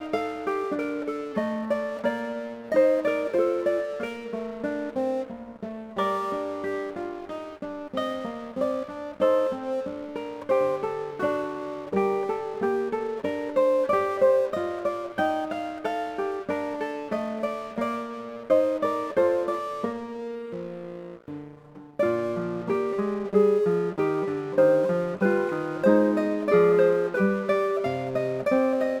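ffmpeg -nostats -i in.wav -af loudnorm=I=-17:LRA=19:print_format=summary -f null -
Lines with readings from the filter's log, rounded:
Input Integrated:    -25.9 LUFS
Input True Peak:      -7.4 dBTP
Input LRA:             7.6 LU
Input Threshold:     -36.1 LUFS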